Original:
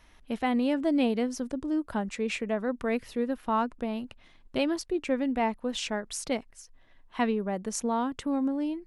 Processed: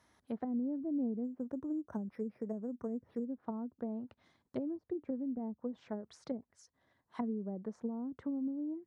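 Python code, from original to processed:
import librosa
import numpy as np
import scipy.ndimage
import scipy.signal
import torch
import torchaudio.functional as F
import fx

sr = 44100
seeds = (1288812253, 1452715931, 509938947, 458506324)

y = fx.env_lowpass_down(x, sr, base_hz=310.0, full_db=-25.5)
y = scipy.signal.sosfilt(scipy.signal.butter(4, 80.0, 'highpass', fs=sr, output='sos'), y)
y = fx.peak_eq(y, sr, hz=2700.0, db=-12.5, octaves=0.59)
y = fx.resample_linear(y, sr, factor=6, at=(1.24, 3.25))
y = y * librosa.db_to_amplitude(-6.5)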